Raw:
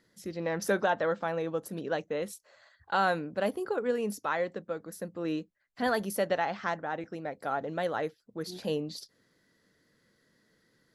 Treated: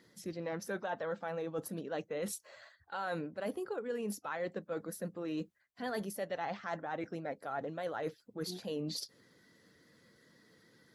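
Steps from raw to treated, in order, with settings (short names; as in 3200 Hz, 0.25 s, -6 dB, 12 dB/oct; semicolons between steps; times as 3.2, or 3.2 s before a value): bin magnitudes rounded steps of 15 dB; HPF 58 Hz; reverse; compressor 6:1, threshold -41 dBFS, peak gain reduction 17.5 dB; reverse; gain +5 dB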